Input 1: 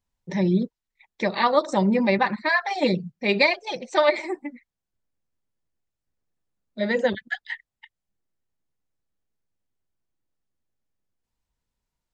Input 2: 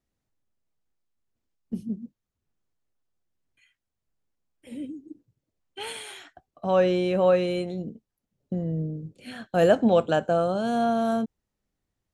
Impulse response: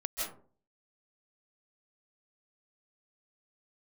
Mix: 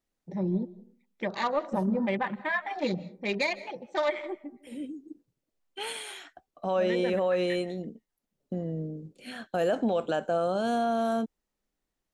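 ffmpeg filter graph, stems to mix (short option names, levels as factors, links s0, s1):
-filter_complex "[0:a]afwtdn=0.0224,acontrast=53,volume=0.2,asplit=2[s0][s1];[s1]volume=0.1[s2];[1:a]equalizer=f=96:w=1.1:g=-14.5,volume=1[s3];[2:a]atrim=start_sample=2205[s4];[s2][s4]afir=irnorm=-1:irlink=0[s5];[s0][s3][s5]amix=inputs=3:normalize=0,alimiter=limit=0.119:level=0:latency=1:release=56"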